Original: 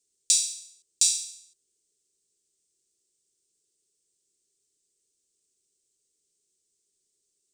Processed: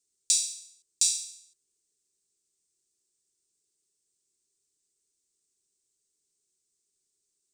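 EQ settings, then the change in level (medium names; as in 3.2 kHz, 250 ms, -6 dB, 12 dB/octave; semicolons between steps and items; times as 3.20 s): peaking EQ 580 Hz -6 dB 0.86 oct; peaking EQ 3.1 kHz -3 dB 0.24 oct; -2.5 dB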